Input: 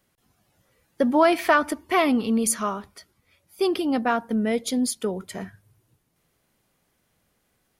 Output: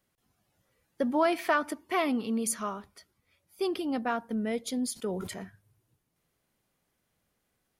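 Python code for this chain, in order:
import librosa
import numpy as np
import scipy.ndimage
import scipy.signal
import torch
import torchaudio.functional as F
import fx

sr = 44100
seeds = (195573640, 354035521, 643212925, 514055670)

y = fx.highpass(x, sr, hz=120.0, slope=12, at=(1.26, 2.53))
y = fx.sustainer(y, sr, db_per_s=38.0, at=(4.93, 5.43))
y = F.gain(torch.from_numpy(y), -7.5).numpy()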